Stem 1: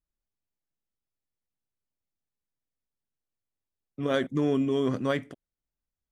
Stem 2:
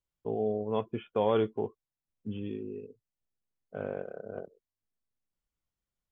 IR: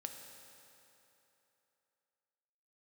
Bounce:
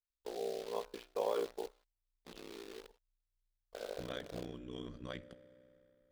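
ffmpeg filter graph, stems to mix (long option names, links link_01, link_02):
-filter_complex "[0:a]asubboost=boost=10:cutoff=140,acompressor=threshold=-25dB:ratio=10,tremolo=f=59:d=0.75,volume=-9dB,asplit=2[link_01][link_02];[link_02]volume=-5dB[link_03];[1:a]acrossover=split=240 2700:gain=0.178 1 0.251[link_04][link_05][link_06];[link_04][link_05][link_06]amix=inputs=3:normalize=0,bandreject=frequency=114.5:width_type=h:width=4,bandreject=frequency=229:width_type=h:width=4,bandreject=frequency=343.5:width_type=h:width=4,bandreject=frequency=458:width_type=h:width=4,bandreject=frequency=572.5:width_type=h:width=4,bandreject=frequency=687:width_type=h:width=4,bandreject=frequency=801.5:width_type=h:width=4,bandreject=frequency=916:width_type=h:width=4,bandreject=frequency=1030.5:width_type=h:width=4,bandreject=frequency=1145:width_type=h:width=4,bandreject=frequency=1259.5:width_type=h:width=4,bandreject=frequency=1374:width_type=h:width=4,bandreject=frequency=1488.5:width_type=h:width=4,acrusher=bits=8:dc=4:mix=0:aa=0.000001,volume=-5.5dB[link_07];[2:a]atrim=start_sample=2205[link_08];[link_03][link_08]afir=irnorm=-1:irlink=0[link_09];[link_01][link_07][link_09]amix=inputs=3:normalize=0,aeval=exprs='val(0)*sin(2*PI*31*n/s)':channel_layout=same,equalizer=frequency=125:width_type=o:width=1:gain=-11,equalizer=frequency=250:width_type=o:width=1:gain=-5,equalizer=frequency=500:width_type=o:width=1:gain=3,equalizer=frequency=4000:width_type=o:width=1:gain=8"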